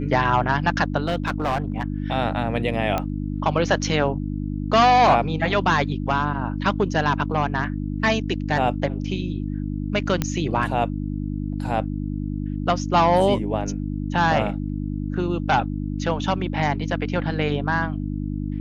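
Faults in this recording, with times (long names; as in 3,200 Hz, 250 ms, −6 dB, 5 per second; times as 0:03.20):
mains hum 50 Hz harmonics 6 −27 dBFS
0:01.08–0:01.84: clipping −18.5 dBFS
0:02.98: click −10 dBFS
0:10.22: click −8 dBFS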